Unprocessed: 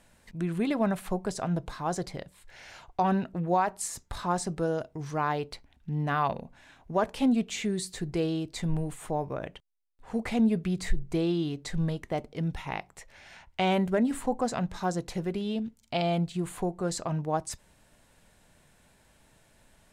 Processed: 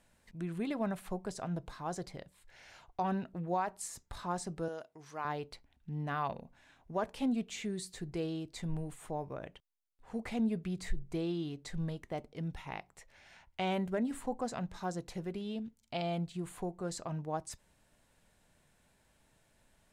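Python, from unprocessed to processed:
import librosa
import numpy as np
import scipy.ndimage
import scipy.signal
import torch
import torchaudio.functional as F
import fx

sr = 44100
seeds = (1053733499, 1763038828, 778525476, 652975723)

y = fx.highpass(x, sr, hz=660.0, slope=6, at=(4.68, 5.25))
y = y * 10.0 ** (-8.0 / 20.0)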